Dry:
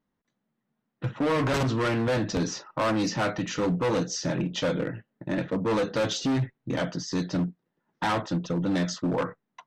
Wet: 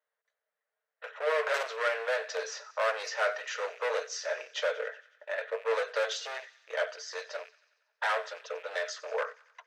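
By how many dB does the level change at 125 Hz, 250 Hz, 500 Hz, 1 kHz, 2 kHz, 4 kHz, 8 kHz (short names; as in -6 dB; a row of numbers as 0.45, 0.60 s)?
under -40 dB, under -40 dB, -3.0 dB, -4.0 dB, +1.5 dB, -4.5 dB, -6.0 dB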